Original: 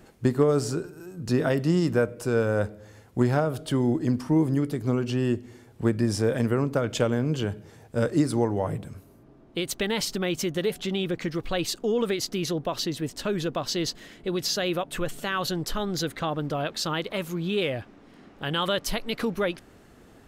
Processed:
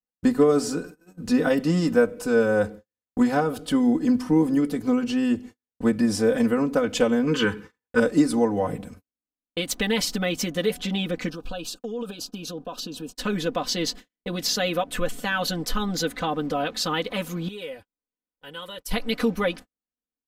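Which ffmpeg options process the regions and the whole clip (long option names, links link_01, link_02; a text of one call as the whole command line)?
ffmpeg -i in.wav -filter_complex "[0:a]asettb=1/sr,asplit=3[link_01][link_02][link_03];[link_01]atrim=end=7.274[link_04];[link_02]atrim=start=7.27:end=8,asetpts=PTS-STARTPTS,afade=type=in:duration=0.004:curve=qsin,afade=type=out:start_time=0.726:duration=0.004:curve=qsin,asuperstop=centerf=670:order=4:qfactor=1.7,equalizer=frequency=1300:width=0.45:gain=13[link_05];[link_03]atrim=start=7.996[link_06];[link_04][link_05]acrossfade=duration=0.004:curve1=hsin:curve2=qsin[link_07];[link_07][link_06]acrossfade=duration=0.004:curve1=qsin:curve2=hsin,asettb=1/sr,asplit=3[link_08][link_09][link_10];[link_08]atrim=end=11.294[link_11];[link_09]atrim=start=11.29:end=13.13,asetpts=PTS-STARTPTS,afade=type=in:duration=0.004:curve=qsin,afade=type=out:start_time=1.836:duration=0.004:curve=qsin,acompressor=threshold=-33dB:ratio=5:attack=3.2:release=140:knee=1:detection=peak,asuperstop=centerf=2000:order=8:qfactor=2.9[link_12];[link_10]atrim=start=13.126[link_13];[link_11][link_12]acrossfade=duration=0.004:curve1=hsin:curve2=qsin[link_14];[link_14][link_13]acrossfade=duration=0.004:curve1=qsin:curve2=hsin,asettb=1/sr,asplit=3[link_15][link_16][link_17];[link_15]atrim=end=17.484[link_18];[link_16]atrim=start=17.48:end=18.91,asetpts=PTS-STARTPTS,afade=type=in:duration=0.004:curve=qsin,afade=type=out:start_time=1.426:duration=0.004:curve=qsin,equalizer=frequency=12000:width_type=o:width=1.2:gain=9,acompressor=threshold=-38dB:ratio=4:attack=3.2:release=140:knee=1:detection=peak,aecho=1:1:2.1:0.44,atrim=end_sample=63063[link_19];[link_17]atrim=start=18.906[link_20];[link_18][link_19]acrossfade=duration=0.004:curve1=hsin:curve2=qsin[link_21];[link_21][link_20]acrossfade=duration=0.004:curve1=qsin:curve2=hsin,agate=range=-51dB:threshold=-39dB:ratio=16:detection=peak,aecho=1:1:4:0.99" out.wav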